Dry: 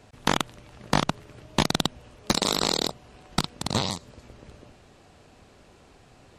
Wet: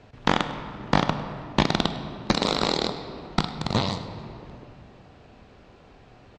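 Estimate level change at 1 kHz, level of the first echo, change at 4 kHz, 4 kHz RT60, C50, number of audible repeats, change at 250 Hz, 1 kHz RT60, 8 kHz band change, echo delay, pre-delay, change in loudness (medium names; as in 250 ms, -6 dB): +2.5 dB, -18.5 dB, -1.0 dB, 1.4 s, 9.0 dB, 1, +3.0 dB, 2.5 s, -9.0 dB, 102 ms, 11 ms, +0.5 dB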